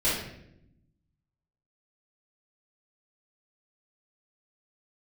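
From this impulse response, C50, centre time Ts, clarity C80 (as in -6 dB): 1.0 dB, 58 ms, 5.5 dB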